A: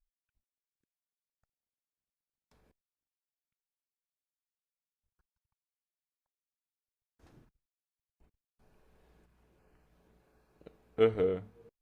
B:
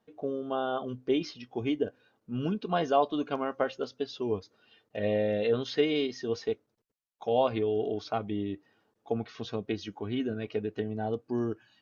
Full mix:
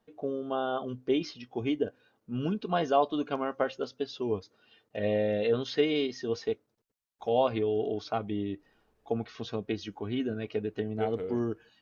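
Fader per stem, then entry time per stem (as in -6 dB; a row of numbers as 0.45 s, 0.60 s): -7.5 dB, 0.0 dB; 0.00 s, 0.00 s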